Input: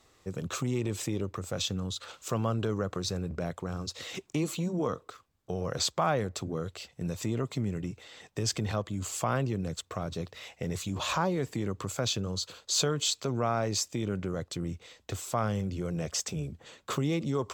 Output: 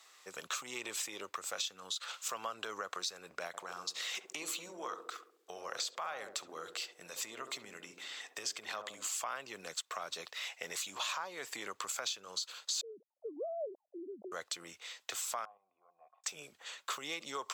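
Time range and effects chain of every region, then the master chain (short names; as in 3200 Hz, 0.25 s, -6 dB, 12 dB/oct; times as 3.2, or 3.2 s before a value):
3.47–9.07 compressor 1.5:1, threshold -38 dBFS + narrowing echo 68 ms, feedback 67%, band-pass 340 Hz, level -5 dB
12.81–14.32 sine-wave speech + steep low-pass 630 Hz 48 dB/oct
15.45–16.24 level quantiser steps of 10 dB + vocal tract filter a
whole clip: HPF 1100 Hz 12 dB/oct; compressor 6:1, threshold -41 dBFS; gain +5.5 dB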